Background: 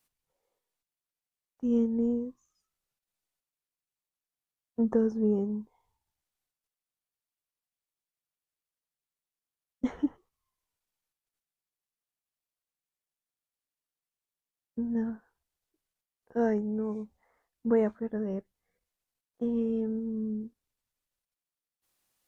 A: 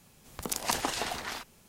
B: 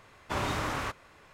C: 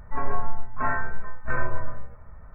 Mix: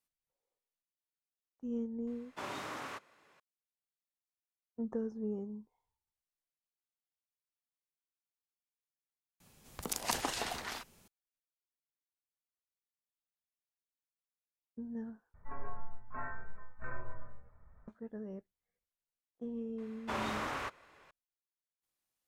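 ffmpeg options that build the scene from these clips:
ffmpeg -i bed.wav -i cue0.wav -i cue1.wav -i cue2.wav -filter_complex "[2:a]asplit=2[link_01][link_02];[0:a]volume=-11.5dB[link_03];[link_01]highpass=210[link_04];[link_02]bass=frequency=250:gain=-8,treble=frequency=4000:gain=-4[link_05];[link_03]asplit=3[link_06][link_07][link_08];[link_06]atrim=end=9.404[link_09];[1:a]atrim=end=1.68,asetpts=PTS-STARTPTS,volume=-4.5dB[link_10];[link_07]atrim=start=11.076:end=15.344[link_11];[3:a]atrim=end=2.54,asetpts=PTS-STARTPTS,volume=-16dB[link_12];[link_08]atrim=start=17.876[link_13];[link_04]atrim=end=1.33,asetpts=PTS-STARTPTS,volume=-9.5dB,afade=type=in:duration=0.004:curve=hsin,afade=type=out:start_time=1.326:duration=0.004:curve=hsin,adelay=2070[link_14];[link_05]atrim=end=1.33,asetpts=PTS-STARTPTS,volume=-4.5dB,afade=type=in:duration=0.004:curve=hsin,afade=type=out:start_time=1.326:duration=0.004:curve=hsin,adelay=19780[link_15];[link_09][link_10]acrossfade=duration=0.004:curve1=hsin:curve2=hsin[link_16];[link_16][link_11]acrossfade=duration=0.004:curve1=hsin:curve2=hsin[link_17];[link_17][link_12]acrossfade=duration=0.004:curve1=hsin:curve2=hsin[link_18];[link_18][link_13]acrossfade=duration=0.004:curve1=hsin:curve2=hsin[link_19];[link_19][link_14][link_15]amix=inputs=3:normalize=0" out.wav

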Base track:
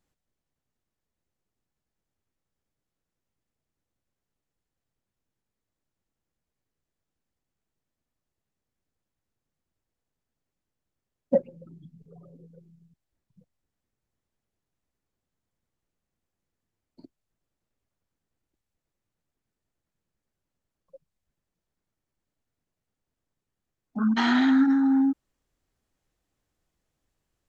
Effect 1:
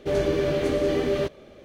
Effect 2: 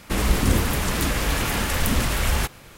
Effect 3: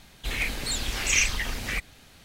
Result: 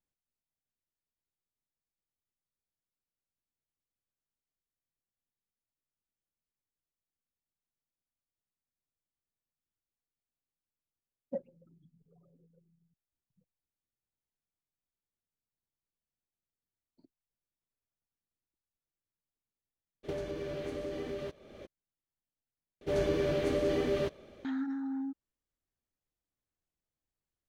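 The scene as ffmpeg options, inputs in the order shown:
ffmpeg -i bed.wav -i cue0.wav -filter_complex "[1:a]asplit=2[link_01][link_02];[0:a]volume=-15dB[link_03];[link_01]acompressor=threshold=-33dB:ratio=16:attack=6.7:release=733:knee=1:detection=peak[link_04];[link_03]asplit=2[link_05][link_06];[link_05]atrim=end=22.814[link_07];[link_02]atrim=end=1.64,asetpts=PTS-STARTPTS,volume=-6.5dB[link_08];[link_06]atrim=start=24.446[link_09];[link_04]atrim=end=1.64,asetpts=PTS-STARTPTS,afade=type=in:duration=0.02,afade=type=out:start_time=1.62:duration=0.02,adelay=20030[link_10];[link_07][link_08]acrossfade=duration=0.004:curve1=hsin:curve2=hsin[link_11];[link_11][link_09]acrossfade=duration=0.004:curve1=hsin:curve2=hsin[link_12];[link_12][link_10]amix=inputs=2:normalize=0" out.wav

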